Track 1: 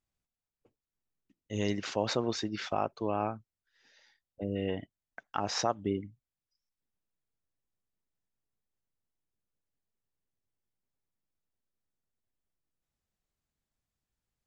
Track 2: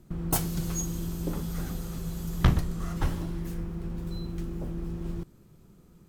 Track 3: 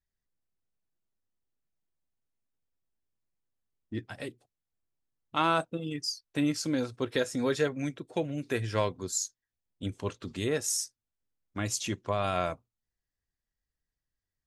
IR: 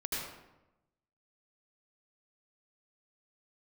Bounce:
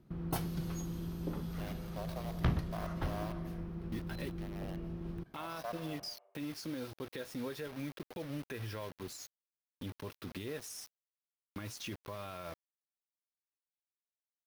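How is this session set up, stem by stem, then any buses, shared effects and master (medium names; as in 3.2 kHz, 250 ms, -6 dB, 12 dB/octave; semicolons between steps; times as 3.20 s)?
-9.0 dB, 0.00 s, bus A, send -8 dB, comb filter that takes the minimum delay 1.8 ms; ladder high-pass 610 Hz, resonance 55%
-5.5 dB, 0.00 s, no bus, no send, high-pass 69 Hz 6 dB/octave; treble shelf 7.9 kHz -9 dB
-1.0 dB, 0.00 s, bus A, no send, band-stop 710 Hz, Q 12; compression 12:1, threshold -34 dBFS, peak gain reduction 13.5 dB
bus A: 0.0 dB, bit crusher 8-bit; peak limiter -31.5 dBFS, peak gain reduction 10 dB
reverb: on, RT60 0.95 s, pre-delay 72 ms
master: peaking EQ 7.4 kHz -11.5 dB 0.48 oct; saturation -20 dBFS, distortion -22 dB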